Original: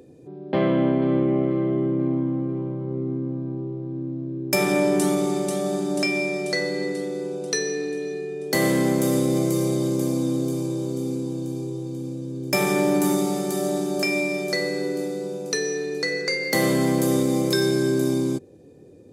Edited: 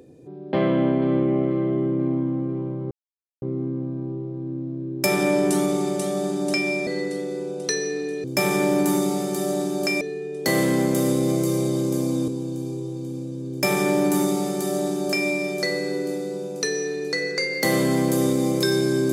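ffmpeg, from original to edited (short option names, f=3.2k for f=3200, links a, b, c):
-filter_complex "[0:a]asplit=6[a][b][c][d][e][f];[a]atrim=end=2.91,asetpts=PTS-STARTPTS,afade=t=out:st=2.906:d=0.004:c=hsin,apad=pad_dur=0.51[g];[b]atrim=start=2.91:end=6.362,asetpts=PTS-STARTPTS,afade=t=in:d=0.004:c=hsin[h];[c]atrim=start=6.708:end=8.082[i];[d]atrim=start=12.398:end=14.172[j];[e]atrim=start=8.078:end=10.352[k];[f]atrim=start=11.178[l];[g][h]concat=n=2:v=0:a=1[m];[m][i]acrossfade=d=0.004:c1=hsin:c2=hsin[n];[n][j]acrossfade=d=0.004:c1=hsin:c2=hsin[o];[o][k]acrossfade=d=0.004:c1=hsin:c2=hsin[p];[p][l]acrossfade=d=0.004:c1=hsin:c2=hsin"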